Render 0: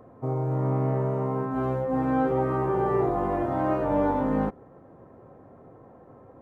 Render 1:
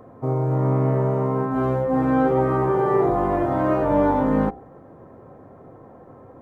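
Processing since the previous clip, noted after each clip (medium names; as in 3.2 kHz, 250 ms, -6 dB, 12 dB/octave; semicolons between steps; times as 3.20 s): band-stop 2.7 kHz, Q 19; de-hum 60.53 Hz, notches 15; trim +5.5 dB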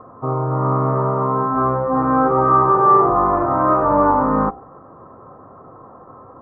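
resonant low-pass 1.2 kHz, resonance Q 6.8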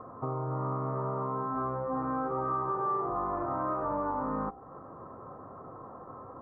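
compression 3:1, threshold -29 dBFS, peak gain reduction 15 dB; trim -4.5 dB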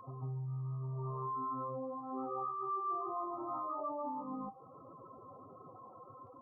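spectral contrast enhancement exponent 3.1; reverse echo 147 ms -3.5 dB; trim -8.5 dB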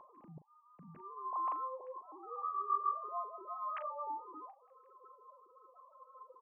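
formants replaced by sine waves; doubling 39 ms -12.5 dB; trim -2 dB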